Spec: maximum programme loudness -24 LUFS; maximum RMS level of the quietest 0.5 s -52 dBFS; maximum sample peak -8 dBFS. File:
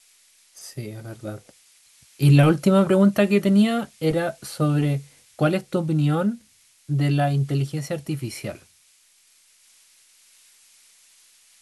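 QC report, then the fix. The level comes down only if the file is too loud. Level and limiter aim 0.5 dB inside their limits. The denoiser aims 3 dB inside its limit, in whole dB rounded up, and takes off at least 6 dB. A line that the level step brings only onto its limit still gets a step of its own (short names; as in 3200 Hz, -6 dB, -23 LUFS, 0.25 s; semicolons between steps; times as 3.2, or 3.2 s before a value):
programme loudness -21.0 LUFS: fail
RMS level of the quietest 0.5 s -58 dBFS: OK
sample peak -6.0 dBFS: fail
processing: gain -3.5 dB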